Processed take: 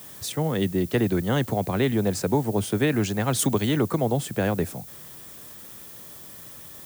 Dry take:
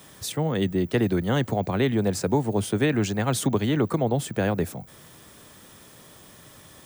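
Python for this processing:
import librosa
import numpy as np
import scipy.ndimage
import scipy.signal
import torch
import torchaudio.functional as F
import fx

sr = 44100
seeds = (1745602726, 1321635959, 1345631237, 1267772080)

y = fx.high_shelf(x, sr, hz=5000.0, db=10.0, at=(3.39, 3.79))
y = fx.dmg_noise_colour(y, sr, seeds[0], colour='violet', level_db=-44.0)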